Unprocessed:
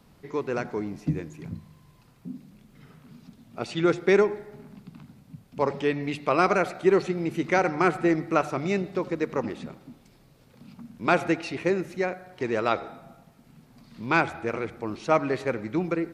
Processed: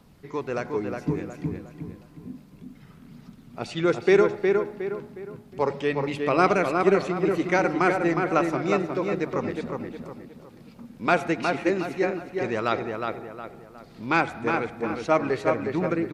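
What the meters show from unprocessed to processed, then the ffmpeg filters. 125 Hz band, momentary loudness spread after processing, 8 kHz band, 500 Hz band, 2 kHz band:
+1.0 dB, 18 LU, +0.5 dB, +2.0 dB, +1.5 dB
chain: -filter_complex "[0:a]aphaser=in_gain=1:out_gain=1:delay=4.7:decay=0.25:speed=0.31:type=triangular,asplit=2[a][b];[b]adelay=362,lowpass=f=2.8k:p=1,volume=-4dB,asplit=2[c][d];[d]adelay=362,lowpass=f=2.8k:p=1,volume=0.39,asplit=2[e][f];[f]adelay=362,lowpass=f=2.8k:p=1,volume=0.39,asplit=2[g][h];[h]adelay=362,lowpass=f=2.8k:p=1,volume=0.39,asplit=2[i][j];[j]adelay=362,lowpass=f=2.8k:p=1,volume=0.39[k];[a][c][e][g][i][k]amix=inputs=6:normalize=0"

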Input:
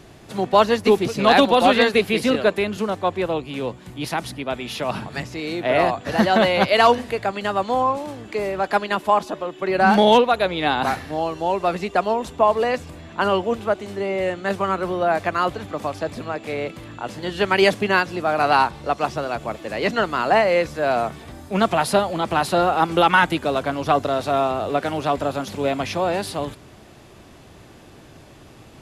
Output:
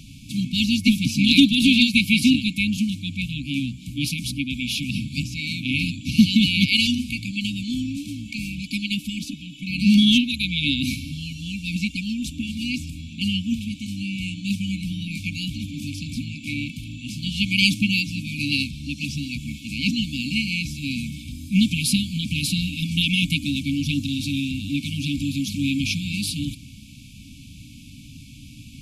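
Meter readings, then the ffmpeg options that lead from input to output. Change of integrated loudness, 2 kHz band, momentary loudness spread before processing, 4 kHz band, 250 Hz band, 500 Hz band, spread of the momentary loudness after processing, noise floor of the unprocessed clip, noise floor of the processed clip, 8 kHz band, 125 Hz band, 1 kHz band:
-2.0 dB, -2.0 dB, 13 LU, +5.5 dB, +4.5 dB, under -35 dB, 14 LU, -46 dBFS, -43 dBFS, +5.5 dB, +5.5 dB, under -40 dB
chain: -af "afftfilt=real='re*(1-between(b*sr/4096,300,2200))':imag='im*(1-between(b*sr/4096,300,2200))':win_size=4096:overlap=0.75,volume=5.5dB"

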